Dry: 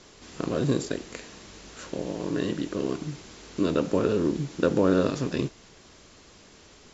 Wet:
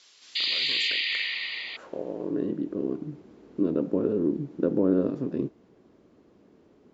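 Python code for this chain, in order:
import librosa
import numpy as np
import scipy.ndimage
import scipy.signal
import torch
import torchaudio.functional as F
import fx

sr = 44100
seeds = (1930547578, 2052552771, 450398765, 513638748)

y = fx.spec_paint(x, sr, seeds[0], shape='noise', start_s=0.35, length_s=1.42, low_hz=1800.0, high_hz=4900.0, level_db=-26.0)
y = fx.filter_sweep_bandpass(y, sr, from_hz=4100.0, to_hz=290.0, start_s=0.6, end_s=2.48, q=1.2)
y = y * librosa.db_to_amplitude(1.0)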